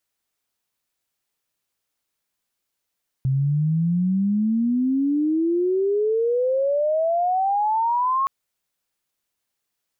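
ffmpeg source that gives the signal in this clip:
ffmpeg -f lavfi -i "aevalsrc='pow(10,(-17.5-0.5*t/5.02)/20)*sin(2*PI*130*5.02/log(1100/130)*(exp(log(1100/130)*t/5.02)-1))':duration=5.02:sample_rate=44100" out.wav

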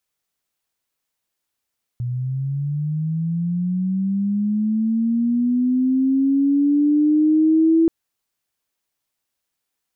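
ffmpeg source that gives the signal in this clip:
ffmpeg -f lavfi -i "aevalsrc='pow(10,(-21.5+10*t/5.88)/20)*sin(2*PI*(120*t+210*t*t/(2*5.88)))':duration=5.88:sample_rate=44100" out.wav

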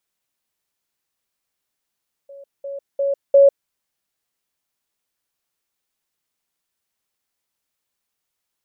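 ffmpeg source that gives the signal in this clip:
ffmpeg -f lavfi -i "aevalsrc='pow(10,(-37+10*floor(t/0.35))/20)*sin(2*PI*557*t)*clip(min(mod(t,0.35),0.15-mod(t,0.35))/0.005,0,1)':duration=1.4:sample_rate=44100" out.wav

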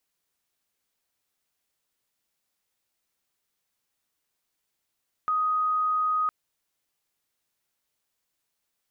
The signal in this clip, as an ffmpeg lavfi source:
ffmpeg -f lavfi -i "aevalsrc='0.0794*sin(2*PI*1250*t)':duration=1.01:sample_rate=44100" out.wav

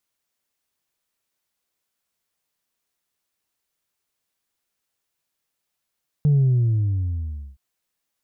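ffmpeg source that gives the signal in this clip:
ffmpeg -f lavfi -i "aevalsrc='0.2*clip((1.32-t)/1.23,0,1)*tanh(1.12*sin(2*PI*150*1.32/log(65/150)*(exp(log(65/150)*t/1.32)-1)))/tanh(1.12)':duration=1.32:sample_rate=44100" out.wav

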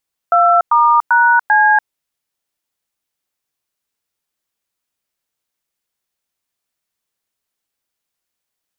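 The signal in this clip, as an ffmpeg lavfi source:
ffmpeg -f lavfi -i "aevalsrc='0.299*clip(min(mod(t,0.393),0.289-mod(t,0.393))/0.002,0,1)*(eq(floor(t/0.393),0)*(sin(2*PI*697*mod(t,0.393))+sin(2*PI*1336*mod(t,0.393)))+eq(floor(t/0.393),1)*(sin(2*PI*941*mod(t,0.393))+sin(2*PI*1209*mod(t,0.393)))+eq(floor(t/0.393),2)*(sin(2*PI*941*mod(t,0.393))+sin(2*PI*1477*mod(t,0.393)))+eq(floor(t/0.393),3)*(sin(2*PI*852*mod(t,0.393))+sin(2*PI*1633*mod(t,0.393))))':duration=1.572:sample_rate=44100" out.wav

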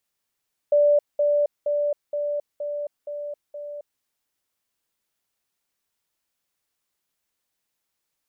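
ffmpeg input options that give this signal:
ffmpeg -f lavfi -i "aevalsrc='pow(10,(-14-3*floor(t/0.47))/20)*sin(2*PI*585*t)*clip(min(mod(t,0.47),0.27-mod(t,0.47))/0.005,0,1)':duration=3.29:sample_rate=44100" out.wav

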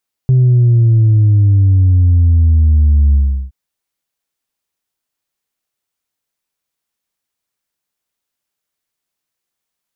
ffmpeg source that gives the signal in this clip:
ffmpeg -f lavfi -i "aevalsrc='0.473*clip((3.22-t)/0.37,0,1)*tanh(1.12*sin(2*PI*130*3.22/log(65/130)*(exp(log(65/130)*t/3.22)-1)))/tanh(1.12)':duration=3.22:sample_rate=44100" out.wav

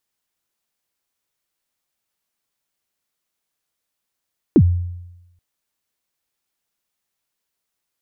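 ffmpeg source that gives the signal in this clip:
ffmpeg -f lavfi -i "aevalsrc='0.531*pow(10,-3*t/0.97)*sin(2*PI*(390*0.061/log(88/390)*(exp(log(88/390)*min(t,0.061)/0.061)-1)+88*max(t-0.061,0)))':duration=0.83:sample_rate=44100" out.wav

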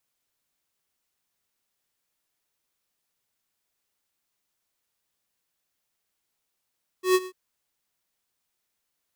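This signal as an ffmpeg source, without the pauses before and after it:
ffmpeg -f lavfi -i "aevalsrc='0.133*(2*lt(mod(370*t,1),0.5)-1)':duration=0.294:sample_rate=44100,afade=type=in:duration=0.118,afade=type=out:start_time=0.118:duration=0.044:silence=0.119,afade=type=out:start_time=0.23:duration=0.064" out.wav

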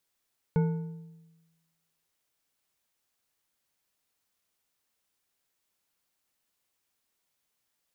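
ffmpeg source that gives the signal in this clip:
ffmpeg -f lavfi -i "aevalsrc='0.1*pow(10,-3*t/1.18)*sin(2*PI*164*t)+0.0398*pow(10,-3*t/0.87)*sin(2*PI*452.1*t)+0.0158*pow(10,-3*t/0.711)*sin(2*PI*886.3*t)+0.00631*pow(10,-3*t/0.612)*sin(2*PI*1465*t)+0.00251*pow(10,-3*t/0.542)*sin(2*PI*2187.8*t)':duration=1.55:sample_rate=44100" out.wav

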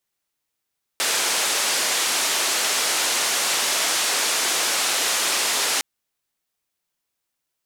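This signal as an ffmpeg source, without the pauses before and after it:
ffmpeg -f lavfi -i "anoisesrc=color=white:duration=4.81:sample_rate=44100:seed=1,highpass=frequency=380,lowpass=frequency=8500,volume=-13dB" out.wav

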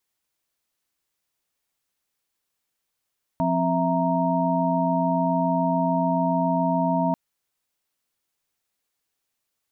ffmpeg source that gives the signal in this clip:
ffmpeg -f lavfi -i "aevalsrc='0.0562*(sin(2*PI*174.61*t)+sin(2*PI*261.63*t)+sin(2*PI*659.26*t)+sin(2*PI*932.33*t))':duration=3.74:sample_rate=44100" out.wav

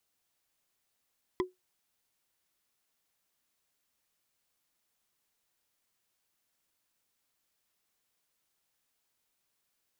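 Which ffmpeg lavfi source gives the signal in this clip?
ffmpeg -f lavfi -i "aevalsrc='0.0708*pow(10,-3*t/0.17)*sin(2*PI*367*t)+0.0447*pow(10,-3*t/0.05)*sin(2*PI*1011.8*t)+0.0282*pow(10,-3*t/0.022)*sin(2*PI*1983.3*t)+0.0178*pow(10,-3*t/0.012)*sin(2*PI*3278.4*t)+0.0112*pow(10,-3*t/0.008)*sin(2*PI*4895.8*t)':duration=0.45:sample_rate=44100" out.wav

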